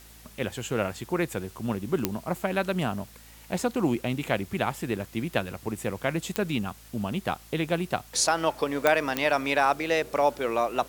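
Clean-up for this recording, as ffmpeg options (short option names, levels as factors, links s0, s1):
-af "adeclick=t=4,bandreject=f=55.4:t=h:w=4,bandreject=f=110.8:t=h:w=4,bandreject=f=166.2:t=h:w=4,bandreject=f=221.6:t=h:w=4,bandreject=f=277:t=h:w=4,afftdn=nr=22:nf=-50"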